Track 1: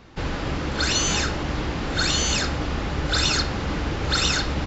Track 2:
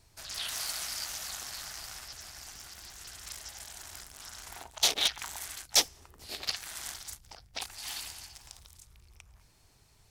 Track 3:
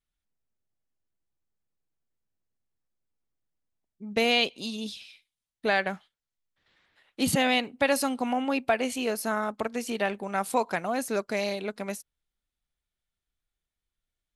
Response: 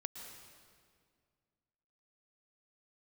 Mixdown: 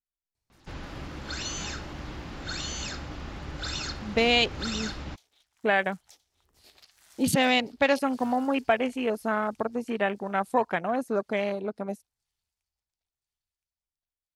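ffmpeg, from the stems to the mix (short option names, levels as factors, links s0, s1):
-filter_complex "[0:a]equalizer=f=460:t=o:w=0.27:g=-4.5,adelay=500,volume=0.251[s0];[1:a]acompressor=threshold=0.0112:ratio=16,adelay=350,volume=0.224,afade=t=in:st=5.75:d=0.49:silence=0.298538,asplit=2[s1][s2];[s2]volume=0.316[s3];[2:a]afwtdn=0.0158,volume=1.19[s4];[s3]aecho=0:1:1019|2038|3057|4076|5095|6114:1|0.43|0.185|0.0795|0.0342|0.0147[s5];[s0][s1][s4][s5]amix=inputs=4:normalize=0"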